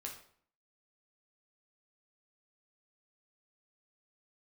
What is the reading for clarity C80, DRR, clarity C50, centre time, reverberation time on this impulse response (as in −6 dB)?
11.5 dB, −0.5 dB, 7.0 dB, 24 ms, 0.55 s